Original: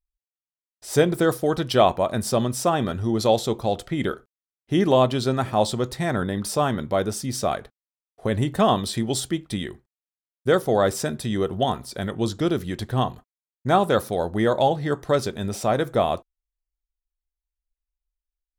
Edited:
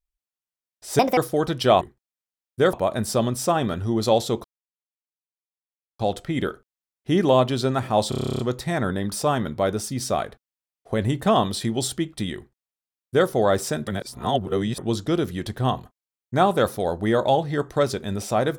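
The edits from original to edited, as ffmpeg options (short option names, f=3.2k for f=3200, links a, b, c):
-filter_complex "[0:a]asplit=18[a][b][c][d][e][f][g][h][i][j][k][l][m][n][o][p][q][r];[a]atrim=end=0.994[s];[b]atrim=start=0.99:end=1.27,asetpts=PTS-STARTPTS,asetrate=67473,aresample=44100[t];[c]atrim=start=1.266:end=1.912[u];[d]atrim=start=9.688:end=10.612[v];[e]atrim=start=1.908:end=3.62,asetpts=PTS-STARTPTS,afade=t=out:st=1.708:d=0.004:c=hsin,apad=pad_dur=1.55[w];[f]atrim=start=3.62:end=5.752,asetpts=PTS-STARTPTS,afade=t=in:d=0.004:c=hsin[x];[g]atrim=start=5.718:end=5.752[y];[h]atrim=start=5.718:end=5.752[z];[i]atrim=start=5.718:end=5.752[aa];[j]atrim=start=5.718:end=5.752[ab];[k]atrim=start=5.718:end=5.752[ac];[l]atrim=start=5.718:end=5.752[ad];[m]atrim=start=5.718:end=5.752[ae];[n]atrim=start=5.718:end=5.752[af];[o]atrim=start=5.718:end=5.752[ag];[p]atrim=start=5.718:end=11.202[ah];[q]atrim=start=11.198:end=12.112,asetpts=PTS-STARTPTS,areverse[ai];[r]atrim=start=12.108[aj];[s][t]acrossfade=d=0.004:c1=hsin:c2=hsin[ak];[ak][u]acrossfade=d=0.004:c1=hsin:c2=hsin[al];[al][v]acrossfade=d=0.004:c1=hsin:c2=hsin[am];[w][x]concat=n=2:v=0:a=1[an];[am][an]acrossfade=d=0.004:c1=hsin:c2=hsin[ao];[ao][y]acrossfade=d=0.004:c1=hsin:c2=hsin[ap];[ap][z]acrossfade=d=0.004:c1=hsin:c2=hsin[aq];[aq][aa]acrossfade=d=0.004:c1=hsin:c2=hsin[ar];[ar][ab]acrossfade=d=0.004:c1=hsin:c2=hsin[as];[as][ac]acrossfade=d=0.004:c1=hsin:c2=hsin[at];[at][ad]acrossfade=d=0.004:c1=hsin:c2=hsin[au];[au][ae]acrossfade=d=0.004:c1=hsin:c2=hsin[av];[av][af]acrossfade=d=0.004:c1=hsin:c2=hsin[aw];[aw][ag]acrossfade=d=0.004:c1=hsin:c2=hsin[ax];[ax][ah]acrossfade=d=0.004:c1=hsin:c2=hsin[ay];[ay][ai]acrossfade=d=0.004:c1=hsin:c2=hsin[az];[az][aj]acrossfade=d=0.004:c1=hsin:c2=hsin"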